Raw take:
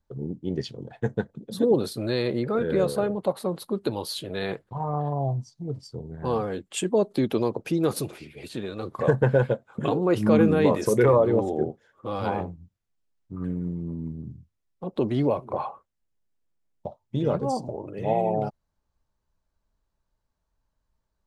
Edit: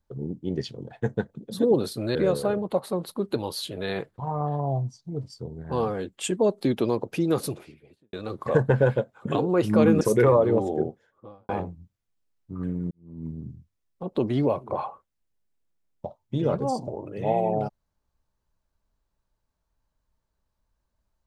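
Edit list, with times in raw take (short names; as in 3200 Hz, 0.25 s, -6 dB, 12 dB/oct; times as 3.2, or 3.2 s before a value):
2.15–2.68 cut
7.88–8.66 studio fade out
10.54–10.82 cut
11.66–12.3 studio fade out
13.72–14.09 fade in quadratic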